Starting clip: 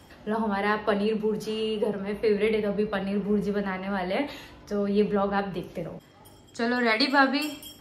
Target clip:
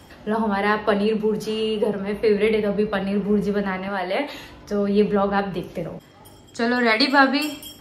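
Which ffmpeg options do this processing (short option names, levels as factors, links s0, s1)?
-filter_complex "[0:a]asettb=1/sr,asplit=3[s0][s1][s2];[s0]atrim=end=3.884[s3];[s1]atrim=start=3.88:end=4.34,asetpts=PTS-STARTPTS,afade=t=in:d=0.004:c=qsin,afade=t=out:st=0.456:d=0.004:c=qsin,bass=f=250:g=-11,treble=f=4000:g=0[s4];[s2]atrim=start=4.336[s5];[s3][s4]acrossfade=d=0.004:c1=hsin:c2=qsin[s6];[s6][s5]acrossfade=d=0.004:c1=qsin:c2=hsin,volume=1.78"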